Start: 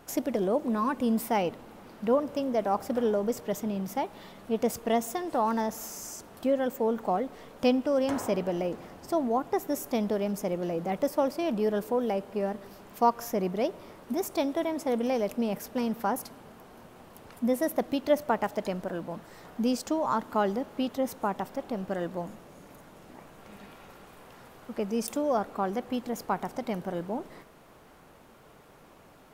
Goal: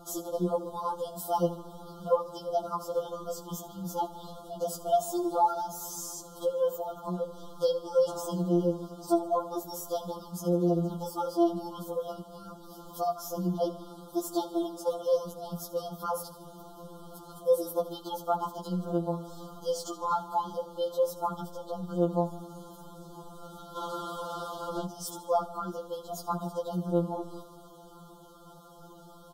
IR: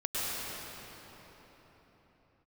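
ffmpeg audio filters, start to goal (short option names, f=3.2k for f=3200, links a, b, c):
-filter_complex "[0:a]asplit=2[a][b];[b]acompressor=threshold=-42dB:ratio=6,volume=-0.5dB[c];[a][c]amix=inputs=2:normalize=0,aecho=1:1:77|154|231|308|385|462:0.15|0.0898|0.0539|0.0323|0.0194|0.0116,asettb=1/sr,asplit=3[d][e][f];[d]atrim=end=23.764[g];[e]atrim=start=23.76:end=24.86,asetpts=PTS-STARTPTS,afade=t=in:d=0.004:c=qsin,afade=t=out:st=1.096:d=0.004:c=qsin,asplit=2[h][i];[i]highpass=f=720:p=1,volume=22dB,asoftclip=type=tanh:threshold=-18dB[j];[h][j]amix=inputs=2:normalize=0,lowpass=f=2.7k:p=1,volume=-6dB[k];[f]atrim=start=24.856[l];[g][k]acrossfade=d=0.004:c1=hsin:c2=qsin[m];[m][l]acrossfade=d=0.004:c1=qsin:c2=hsin,asuperstop=centerf=2100:order=20:qfactor=1.3,afftfilt=real='re*2.83*eq(mod(b,8),0)':imag='im*2.83*eq(mod(b,8),0)':win_size=2048:overlap=0.75"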